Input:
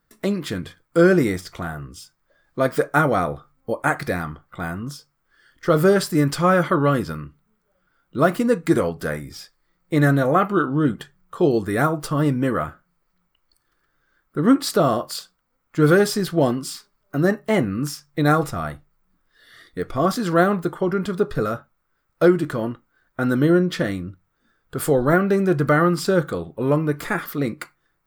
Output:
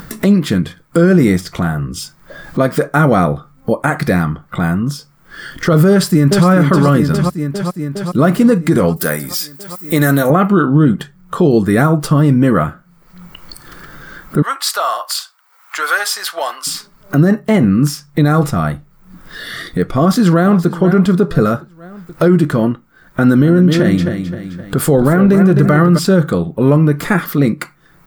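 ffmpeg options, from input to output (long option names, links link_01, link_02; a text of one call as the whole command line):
ffmpeg -i in.wav -filter_complex "[0:a]asplit=2[link_01][link_02];[link_02]afade=type=in:start_time=5.9:duration=0.01,afade=type=out:start_time=6.47:duration=0.01,aecho=0:1:410|820|1230|1640|2050|2460|2870|3280|3690:0.473151|0.307548|0.199906|0.129939|0.0844605|0.0548993|0.0356845|0.023195|0.0150767[link_03];[link_01][link_03]amix=inputs=2:normalize=0,asettb=1/sr,asplit=3[link_04][link_05][link_06];[link_04]atrim=end=8.964[link_07];[link_05]atrim=start=8.96:end=10.3,asetpts=PTS-STARTPTS,afade=type=in:duration=0.004:curve=qsin,afade=type=out:start_time=1.336:duration=0.004:curve=qsin,aemphasis=mode=production:type=bsi[link_08];[link_06]atrim=start=10.296[link_09];[link_07][link_08]acrossfade=duration=0.004:curve1=hsin:curve2=qsin[link_10];[link_10][link_09]acrossfade=duration=0.004:curve1=qsin:curve2=hsin,asettb=1/sr,asplit=3[link_11][link_12][link_13];[link_11]atrim=end=14.424[link_14];[link_12]atrim=start=14.42:end=16.67,asetpts=PTS-STARTPTS,afade=type=in:duration=0.004:curve=qsin,afade=type=out:start_time=2.246:duration=0.004:curve=qsin,highpass=frequency=850:width=0.5412,highpass=frequency=850:width=1.3066[link_15];[link_13]atrim=start=16.666[link_16];[link_14][link_15]acrossfade=duration=0.004:curve1=hsin:curve2=qsin[link_17];[link_17][link_16]acrossfade=duration=0.004:curve1=qsin:curve2=hsin,asplit=2[link_18][link_19];[link_19]afade=type=in:start_time=19.96:duration=0.01,afade=type=out:start_time=20.72:duration=0.01,aecho=0:1:480|960|1440:0.16788|0.0419701|0.0104925[link_20];[link_18][link_20]amix=inputs=2:normalize=0,asplit=3[link_21][link_22][link_23];[link_21]afade=type=out:start_time=23.41:duration=0.02[link_24];[link_22]aecho=1:1:261|522|783:0.355|0.0887|0.0222,afade=type=in:start_time=23.41:duration=0.02,afade=type=out:start_time=25.97:duration=0.02[link_25];[link_23]afade=type=in:start_time=25.97:duration=0.02[link_26];[link_24][link_25][link_26]amix=inputs=3:normalize=0,equalizer=frequency=180:width_type=o:width=1:gain=8.5,acompressor=mode=upward:threshold=-22dB:ratio=2.5,alimiter=level_in=9dB:limit=-1dB:release=50:level=0:latency=1,volume=-1dB" out.wav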